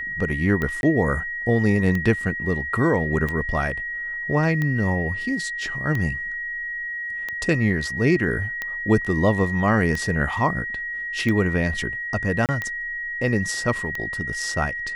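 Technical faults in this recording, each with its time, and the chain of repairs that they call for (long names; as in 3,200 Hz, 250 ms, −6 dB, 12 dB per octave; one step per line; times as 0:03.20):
scratch tick 45 rpm −14 dBFS
whistle 1,900 Hz −27 dBFS
0:00.81–0:00.83: drop-out 21 ms
0:12.46–0:12.49: drop-out 28 ms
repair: click removal
notch filter 1,900 Hz, Q 30
repair the gap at 0:00.81, 21 ms
repair the gap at 0:12.46, 28 ms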